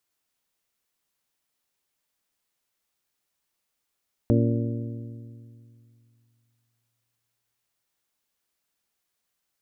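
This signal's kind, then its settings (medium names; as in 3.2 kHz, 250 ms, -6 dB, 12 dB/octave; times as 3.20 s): metal hit bell, length 3.54 s, lowest mode 116 Hz, modes 6, decay 2.65 s, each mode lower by 2 dB, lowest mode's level -19 dB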